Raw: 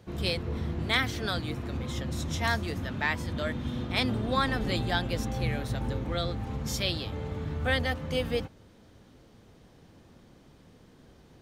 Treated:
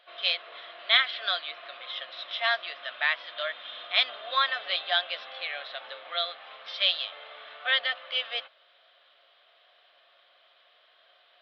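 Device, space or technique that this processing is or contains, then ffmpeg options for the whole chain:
musical greeting card: -af "aresample=11025,aresample=44100,highpass=f=820:w=0.5412,highpass=f=820:w=1.3066,superequalizer=8b=2.24:9b=0.398:14b=0.355,equalizer=f=3.2k:t=o:w=0.5:g=7,volume=3dB"

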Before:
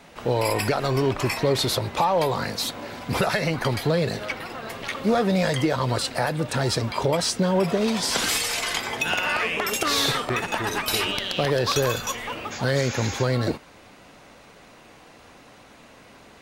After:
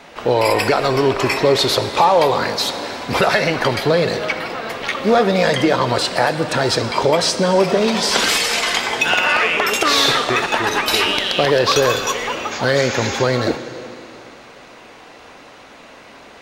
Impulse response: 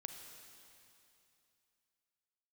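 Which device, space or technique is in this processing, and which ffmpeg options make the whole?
filtered reverb send: -filter_complex "[0:a]asplit=2[a][b];[b]highpass=240,lowpass=7.1k[c];[1:a]atrim=start_sample=2205[d];[c][d]afir=irnorm=-1:irlink=0,volume=5.5dB[e];[a][e]amix=inputs=2:normalize=0,volume=2dB"

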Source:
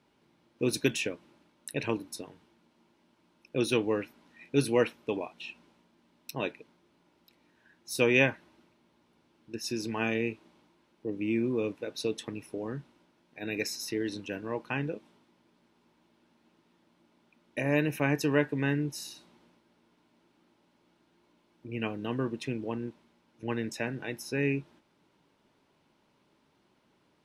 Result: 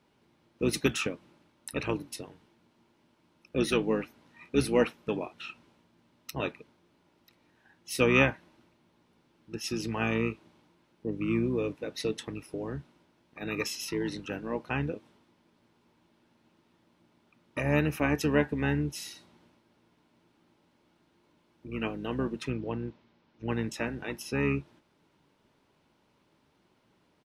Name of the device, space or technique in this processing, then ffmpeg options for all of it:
octave pedal: -filter_complex "[0:a]asettb=1/sr,asplit=3[a][b][c];[a]atrim=end=22.504[d];[b]atrim=start=22.5:end=23.49,asetpts=PTS-STARTPTS,afade=t=in:d=0.004:c=qsin,afade=t=out:st=0.986:d=0.004:c=qsin,lowpass=f=5.5k:w=0.5412,lowpass=f=5.5k:w=1.3066[e];[c]atrim=start=23.486[f];[d][e]acrossfade=d=0.004:c1=hsin:c2=qsin[g];[g][f]acrossfade=d=0.004:c1=qsin:c2=hsin,asplit=2[h][i];[i]asetrate=22050,aresample=44100,atempo=2,volume=-8dB[j];[h][j]amix=inputs=2:normalize=0"

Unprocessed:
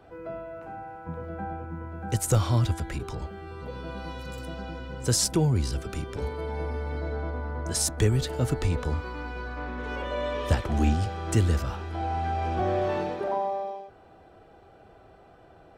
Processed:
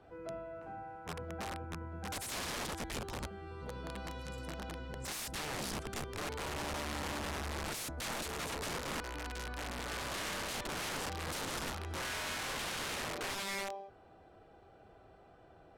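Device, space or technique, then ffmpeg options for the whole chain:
overflowing digital effects unit: -af "aeval=exprs='(mod(23.7*val(0)+1,2)-1)/23.7':c=same,lowpass=12k,volume=-6.5dB"

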